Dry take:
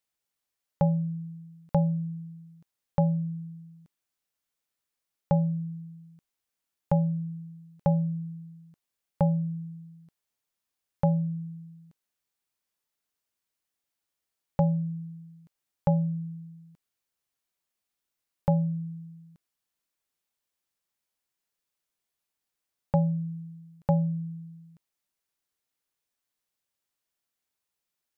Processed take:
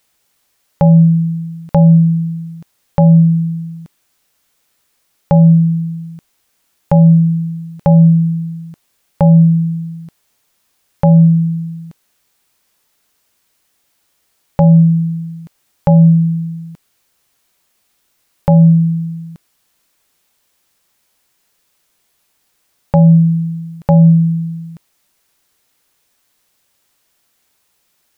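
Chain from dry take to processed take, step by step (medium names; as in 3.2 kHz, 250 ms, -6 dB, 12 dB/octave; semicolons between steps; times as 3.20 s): loudness maximiser +23.5 dB; trim -1 dB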